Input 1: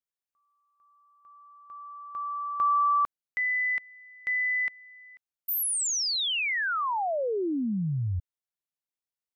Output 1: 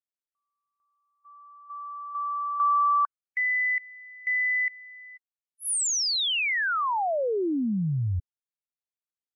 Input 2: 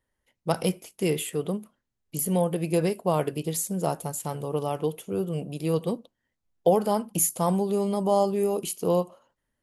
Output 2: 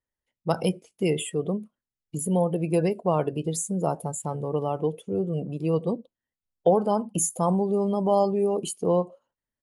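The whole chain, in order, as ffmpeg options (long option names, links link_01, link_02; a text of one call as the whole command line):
ffmpeg -i in.wav -filter_complex "[0:a]afftdn=noise_reduction=18:noise_floor=-37,aresample=22050,aresample=44100,asplit=2[link_01][link_02];[link_02]acompressor=threshold=-39dB:ratio=6:attack=1.5:release=51:knee=6:detection=rms,volume=0dB[link_03];[link_01][link_03]amix=inputs=2:normalize=0" out.wav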